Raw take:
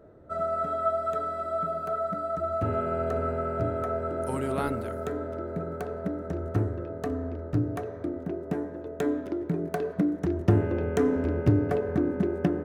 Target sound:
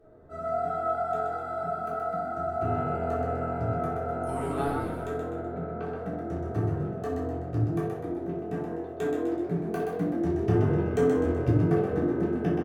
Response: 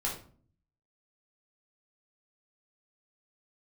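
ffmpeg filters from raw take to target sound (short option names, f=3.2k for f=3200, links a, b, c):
-filter_complex "[0:a]asettb=1/sr,asplit=3[a][b][c];[a]atrim=end=5.204[d];[b]atrim=start=5.2:end=5.83,asetpts=PTS-STARTPTS,afade=t=in:d=0.004:c=qsin,afade=t=out:st=0.626:d=0.004:c=qsin,lowpass=f=3.9k:w=0.5412,lowpass=f=3.9k:w=1.3066[e];[c]atrim=start=5.826[f];[d][e]acrossfade=d=0.004:c1=hsin:c2=qsin[g];[g][f]acrossfade=d=0.004:c1=qsin:c2=hsin,asplit=7[h][i][j][k][l][m][n];[i]adelay=126,afreqshift=44,volume=-5dB[o];[j]adelay=252,afreqshift=88,volume=-11.7dB[p];[k]adelay=378,afreqshift=132,volume=-18.5dB[q];[l]adelay=504,afreqshift=176,volume=-25.2dB[r];[m]adelay=630,afreqshift=220,volume=-32dB[s];[n]adelay=756,afreqshift=264,volume=-38.7dB[t];[h][o][p][q][r][s][t]amix=inputs=7:normalize=0[u];[1:a]atrim=start_sample=2205,afade=t=out:st=0.14:d=0.01,atrim=end_sample=6615,asetrate=37926,aresample=44100[v];[u][v]afir=irnorm=-1:irlink=0,volume=-7.5dB"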